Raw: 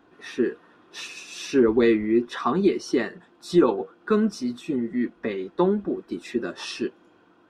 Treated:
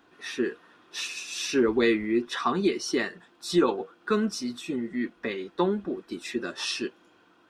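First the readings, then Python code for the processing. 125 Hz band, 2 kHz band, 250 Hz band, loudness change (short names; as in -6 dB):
-5.0 dB, +1.5 dB, -4.5 dB, -4.0 dB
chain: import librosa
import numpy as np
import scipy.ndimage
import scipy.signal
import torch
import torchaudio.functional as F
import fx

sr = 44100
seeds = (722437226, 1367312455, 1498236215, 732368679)

y = fx.tilt_shelf(x, sr, db=-5.0, hz=1400.0)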